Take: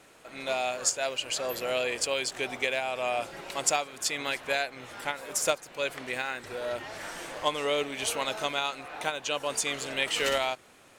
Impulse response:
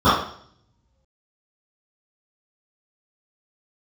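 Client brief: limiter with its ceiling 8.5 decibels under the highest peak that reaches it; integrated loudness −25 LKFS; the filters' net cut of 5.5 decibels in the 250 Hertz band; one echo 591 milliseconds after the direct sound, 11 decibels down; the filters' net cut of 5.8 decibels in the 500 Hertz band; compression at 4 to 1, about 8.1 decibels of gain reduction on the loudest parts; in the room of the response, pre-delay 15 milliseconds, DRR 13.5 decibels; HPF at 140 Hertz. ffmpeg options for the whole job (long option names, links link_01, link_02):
-filter_complex "[0:a]highpass=140,equalizer=frequency=250:width_type=o:gain=-4,equalizer=frequency=500:width_type=o:gain=-6.5,acompressor=threshold=-31dB:ratio=4,alimiter=level_in=2dB:limit=-24dB:level=0:latency=1,volume=-2dB,aecho=1:1:591:0.282,asplit=2[link_01][link_02];[1:a]atrim=start_sample=2205,adelay=15[link_03];[link_02][link_03]afir=irnorm=-1:irlink=0,volume=-40dB[link_04];[link_01][link_04]amix=inputs=2:normalize=0,volume=12.5dB"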